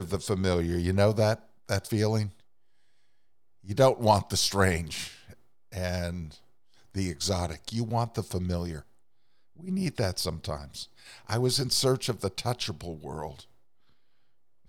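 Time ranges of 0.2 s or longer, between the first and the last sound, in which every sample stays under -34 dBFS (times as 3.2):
1.35–1.69
2.28–3.69
5.08–5.74
6.26–6.96
8.79–9.67
10.83–11.29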